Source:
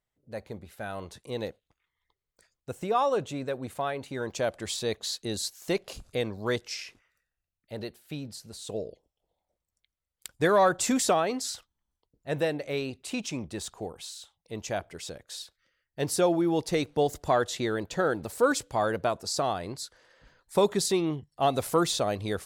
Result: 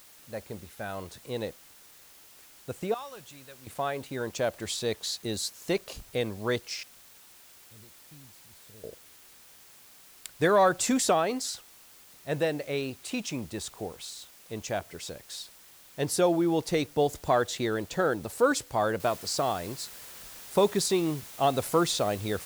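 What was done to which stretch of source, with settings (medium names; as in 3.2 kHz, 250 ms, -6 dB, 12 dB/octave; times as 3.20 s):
2.94–3.67 s: amplifier tone stack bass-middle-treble 5-5-5
6.83–8.84 s: amplifier tone stack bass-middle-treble 10-0-1
19.00 s: noise floor step -54 dB -46 dB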